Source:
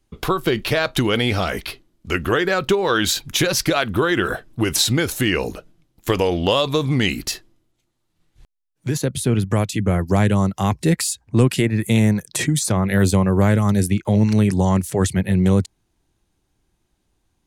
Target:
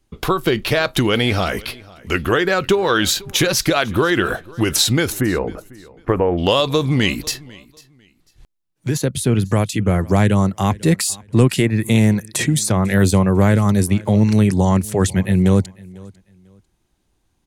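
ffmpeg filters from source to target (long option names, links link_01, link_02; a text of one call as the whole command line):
ffmpeg -i in.wav -filter_complex "[0:a]asplit=3[link_01][link_02][link_03];[link_01]afade=type=out:start_time=5.19:duration=0.02[link_04];[link_02]lowpass=frequency=1700:width=0.5412,lowpass=frequency=1700:width=1.3066,afade=type=in:start_time=5.19:duration=0.02,afade=type=out:start_time=6.37:duration=0.02[link_05];[link_03]afade=type=in:start_time=6.37:duration=0.02[link_06];[link_04][link_05][link_06]amix=inputs=3:normalize=0,asplit=2[link_07][link_08];[link_08]aecho=0:1:497|994:0.0708|0.017[link_09];[link_07][link_09]amix=inputs=2:normalize=0,volume=2dB" out.wav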